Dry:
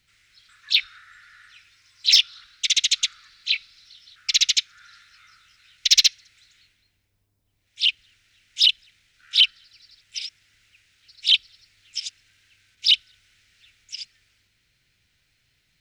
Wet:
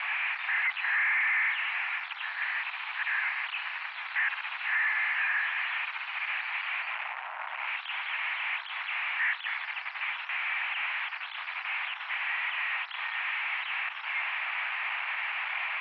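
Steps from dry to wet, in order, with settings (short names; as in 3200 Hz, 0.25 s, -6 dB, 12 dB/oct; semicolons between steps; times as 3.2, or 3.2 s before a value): infinite clipping; mistuned SSB +340 Hz 480–2100 Hz; gain +2.5 dB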